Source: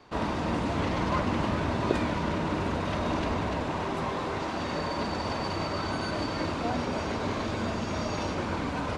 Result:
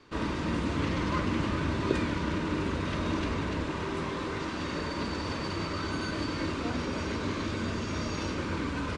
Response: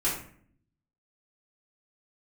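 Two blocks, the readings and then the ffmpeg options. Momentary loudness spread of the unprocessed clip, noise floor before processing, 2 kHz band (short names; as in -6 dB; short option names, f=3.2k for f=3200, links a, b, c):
3 LU, -33 dBFS, -0.5 dB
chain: -filter_complex "[0:a]equalizer=f=740:w=2.5:g=-12.5,aresample=22050,aresample=44100,asplit=2[a][b];[1:a]atrim=start_sample=2205[c];[b][c]afir=irnorm=-1:irlink=0,volume=-17.5dB[d];[a][d]amix=inputs=2:normalize=0,volume=-1.5dB"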